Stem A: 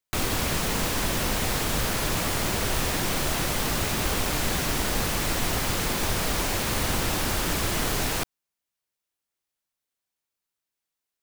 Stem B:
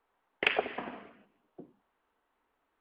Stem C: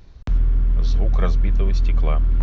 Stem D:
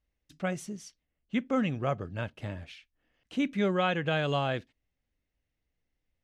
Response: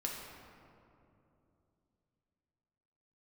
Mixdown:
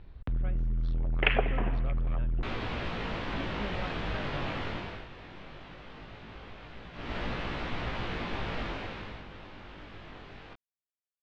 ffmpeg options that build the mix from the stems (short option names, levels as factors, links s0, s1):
-filter_complex "[0:a]flanger=delay=17:depth=3.2:speed=0.19,adelay=2300,volume=2.66,afade=t=out:st=4.65:d=0.42:silence=0.237137,afade=t=in:st=6.93:d=0.24:silence=0.237137,afade=t=out:st=8.61:d=0.63:silence=0.237137[s0];[1:a]adelay=800,volume=1.26[s1];[2:a]acontrast=76,asoftclip=type=tanh:threshold=0.178,volume=0.266[s2];[3:a]volume=0.188[s3];[s0][s1][s2][s3]amix=inputs=4:normalize=0,lowpass=f=3400:w=0.5412,lowpass=f=3400:w=1.3066"